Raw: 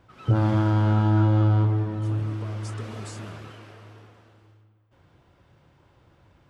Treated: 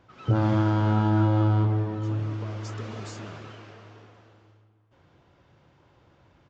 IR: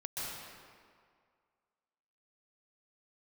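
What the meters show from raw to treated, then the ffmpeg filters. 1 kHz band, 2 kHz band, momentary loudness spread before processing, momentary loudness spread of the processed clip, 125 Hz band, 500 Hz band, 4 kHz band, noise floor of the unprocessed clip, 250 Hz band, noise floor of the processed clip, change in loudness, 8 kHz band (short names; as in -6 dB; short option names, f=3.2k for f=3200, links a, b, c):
+0.5 dB, 0.0 dB, 17 LU, 17 LU, -2.5 dB, +0.5 dB, 0.0 dB, -61 dBFS, 0.0 dB, -62 dBFS, -2.0 dB, n/a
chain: -filter_complex "[0:a]lowshelf=f=100:g=-7,asplit=2[a][b];[1:a]atrim=start_sample=2205,lowpass=1.1k[c];[b][c]afir=irnorm=-1:irlink=0,volume=-15.5dB[d];[a][d]amix=inputs=2:normalize=0,aresample=16000,aresample=44100"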